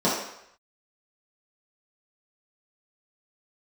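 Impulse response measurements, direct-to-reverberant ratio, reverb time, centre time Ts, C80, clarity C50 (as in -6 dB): -9.5 dB, 0.75 s, 53 ms, 5.5 dB, 2.0 dB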